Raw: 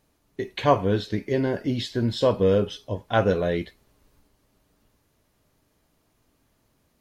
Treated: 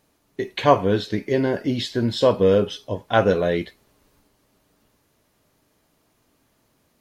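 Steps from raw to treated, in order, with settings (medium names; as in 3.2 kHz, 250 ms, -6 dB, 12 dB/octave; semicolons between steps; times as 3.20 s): bass shelf 90 Hz -10 dB; trim +4 dB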